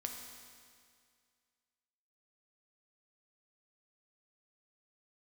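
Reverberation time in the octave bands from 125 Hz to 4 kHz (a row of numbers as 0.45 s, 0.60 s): 2.1 s, 2.1 s, 2.1 s, 2.1 s, 2.1 s, 2.1 s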